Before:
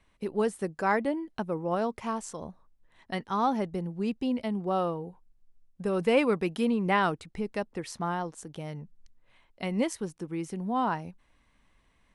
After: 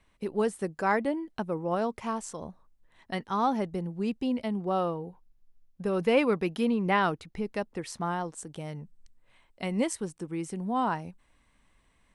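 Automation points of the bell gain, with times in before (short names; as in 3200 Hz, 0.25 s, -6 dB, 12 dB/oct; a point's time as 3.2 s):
bell 8200 Hz 0.25 oct
4.39 s +1.5 dB
4.99 s -8 dB
7.31 s -8 dB
7.6 s -1 dB
8.42 s +8 dB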